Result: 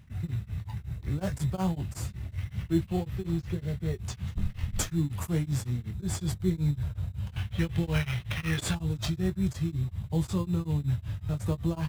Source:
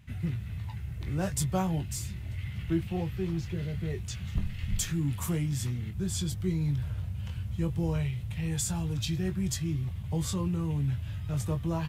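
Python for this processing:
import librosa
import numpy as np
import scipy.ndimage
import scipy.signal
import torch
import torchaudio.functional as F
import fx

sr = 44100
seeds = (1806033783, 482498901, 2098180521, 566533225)

p1 = fx.band_shelf(x, sr, hz=2500.0, db=14.0, octaves=1.7, at=(7.36, 8.75))
p2 = fx.sample_hold(p1, sr, seeds[0], rate_hz=3800.0, jitter_pct=0)
p3 = p1 + (p2 * 10.0 ** (-5.0 / 20.0))
y = p3 * np.abs(np.cos(np.pi * 5.4 * np.arange(len(p3)) / sr))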